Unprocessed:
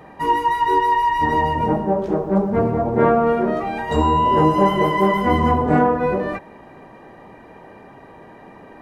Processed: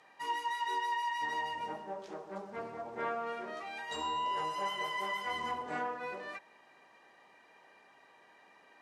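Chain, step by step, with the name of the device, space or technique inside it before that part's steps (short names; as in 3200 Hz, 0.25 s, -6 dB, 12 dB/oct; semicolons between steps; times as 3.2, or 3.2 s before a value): 4.32–5.36 bell 270 Hz -12.5 dB 0.58 oct; piezo pickup straight into a mixer (LPF 5900 Hz 12 dB/oct; differentiator)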